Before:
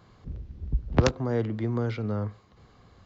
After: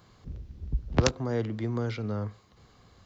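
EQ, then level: high shelf 4000 Hz +10 dB; -2.5 dB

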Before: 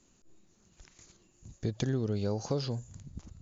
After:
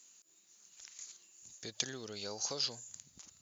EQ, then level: differentiator; high shelf 5300 Hz -4 dB; +13.0 dB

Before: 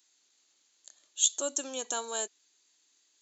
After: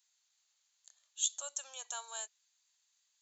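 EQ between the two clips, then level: HPF 730 Hz 24 dB/oct; -7.5 dB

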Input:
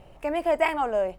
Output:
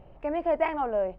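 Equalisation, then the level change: tape spacing loss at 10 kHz 34 dB; 0.0 dB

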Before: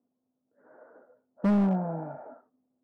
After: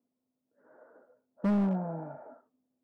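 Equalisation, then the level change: notch 750 Hz, Q 21; -3.5 dB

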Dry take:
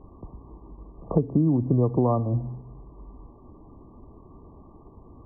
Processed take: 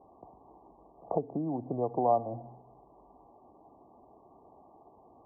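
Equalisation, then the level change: HPF 550 Hz 6 dB/oct; synth low-pass 750 Hz, resonance Q 4.9; -6.0 dB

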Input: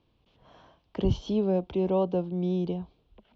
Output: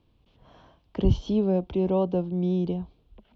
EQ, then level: low shelf 120 Hz +8 dB; bell 260 Hz +2 dB; 0.0 dB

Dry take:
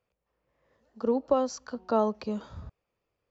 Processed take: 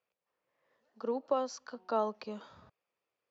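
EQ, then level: BPF 150–5500 Hz; low shelf 460 Hz -10.5 dB; -2.0 dB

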